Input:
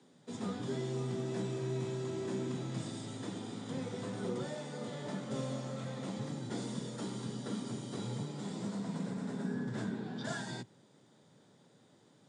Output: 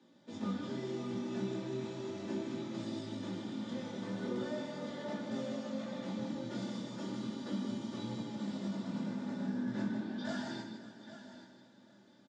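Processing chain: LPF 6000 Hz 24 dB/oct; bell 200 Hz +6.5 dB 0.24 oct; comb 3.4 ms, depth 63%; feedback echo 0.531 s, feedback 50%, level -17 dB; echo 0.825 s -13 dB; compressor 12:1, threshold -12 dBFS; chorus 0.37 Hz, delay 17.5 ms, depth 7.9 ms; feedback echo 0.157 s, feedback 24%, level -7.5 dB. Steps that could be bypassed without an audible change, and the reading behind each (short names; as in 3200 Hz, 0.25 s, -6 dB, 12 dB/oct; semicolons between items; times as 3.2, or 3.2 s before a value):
compressor, threshold -12 dBFS: input peak -23.5 dBFS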